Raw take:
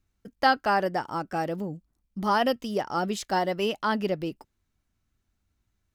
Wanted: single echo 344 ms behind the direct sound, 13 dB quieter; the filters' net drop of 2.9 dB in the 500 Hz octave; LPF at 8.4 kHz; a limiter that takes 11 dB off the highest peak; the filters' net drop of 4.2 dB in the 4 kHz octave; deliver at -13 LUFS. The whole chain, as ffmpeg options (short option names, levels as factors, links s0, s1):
-af "lowpass=8400,equalizer=f=500:t=o:g=-3.5,equalizer=f=4000:t=o:g=-6,alimiter=limit=0.0708:level=0:latency=1,aecho=1:1:344:0.224,volume=10.6"